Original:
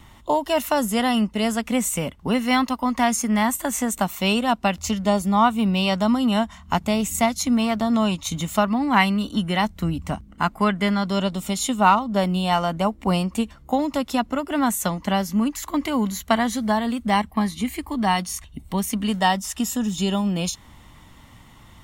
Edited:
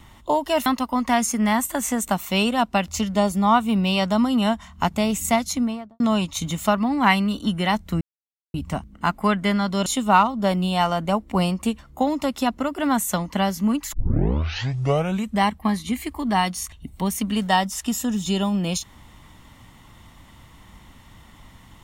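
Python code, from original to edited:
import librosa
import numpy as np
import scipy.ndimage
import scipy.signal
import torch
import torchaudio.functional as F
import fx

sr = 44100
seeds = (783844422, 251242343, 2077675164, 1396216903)

y = fx.studio_fade_out(x, sr, start_s=7.33, length_s=0.57)
y = fx.edit(y, sr, fx.cut(start_s=0.66, length_s=1.9),
    fx.insert_silence(at_s=9.91, length_s=0.53),
    fx.cut(start_s=11.23, length_s=0.35),
    fx.tape_start(start_s=15.65, length_s=1.48), tone=tone)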